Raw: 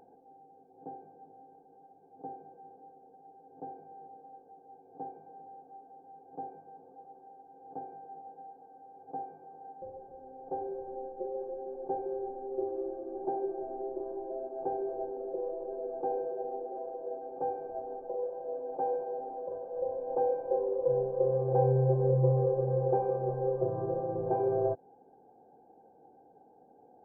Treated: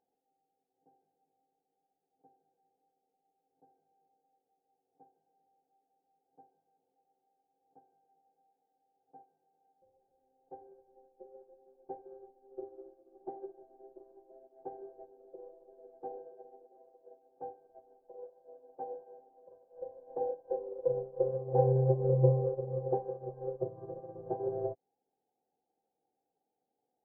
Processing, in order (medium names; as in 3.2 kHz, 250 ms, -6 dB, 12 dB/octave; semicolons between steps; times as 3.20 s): low-pass that closes with the level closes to 860 Hz, closed at -27.5 dBFS; upward expansion 2.5:1, over -42 dBFS; trim +3 dB